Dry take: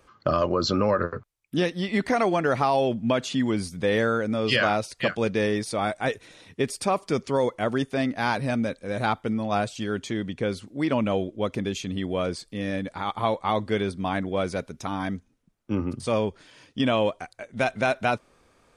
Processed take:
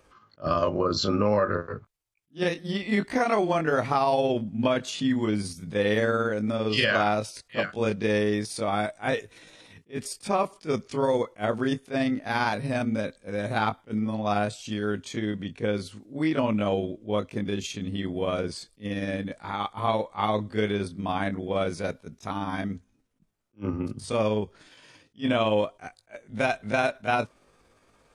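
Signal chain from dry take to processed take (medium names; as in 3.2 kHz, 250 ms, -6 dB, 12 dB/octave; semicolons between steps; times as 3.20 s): granular stretch 1.5×, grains 115 ms; attacks held to a fixed rise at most 370 dB/s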